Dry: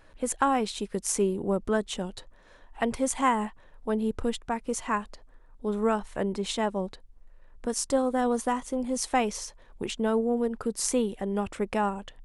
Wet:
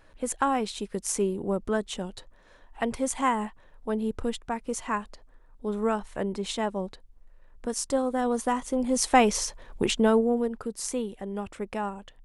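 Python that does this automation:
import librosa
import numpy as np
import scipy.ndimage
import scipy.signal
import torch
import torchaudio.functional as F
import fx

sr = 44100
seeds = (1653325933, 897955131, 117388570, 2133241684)

y = fx.gain(x, sr, db=fx.line((8.23, -1.0), (9.39, 7.5), (9.92, 7.5), (10.74, -4.5)))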